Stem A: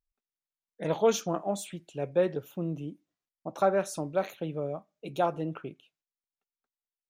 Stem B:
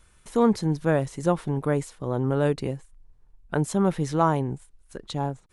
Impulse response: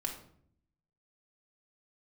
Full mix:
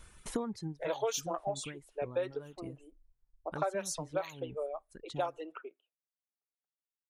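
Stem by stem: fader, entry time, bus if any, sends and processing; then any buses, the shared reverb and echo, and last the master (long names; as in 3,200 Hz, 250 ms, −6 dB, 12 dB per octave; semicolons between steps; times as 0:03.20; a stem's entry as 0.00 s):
0.0 dB, 0.00 s, no send, high-pass filter 410 Hz 24 dB per octave; high-shelf EQ 2,700 Hz +6.5 dB; low-pass that shuts in the quiet parts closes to 970 Hz, open at −24.5 dBFS
+3.0 dB, 0.00 s, no send, downward compressor 4 to 1, threshold −26 dBFS, peak gain reduction 10.5 dB; automatic ducking −14 dB, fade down 0.55 s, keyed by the first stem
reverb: not used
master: reverb reduction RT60 1.6 s; downward compressor 5 to 1, threshold −30 dBFS, peak gain reduction 10 dB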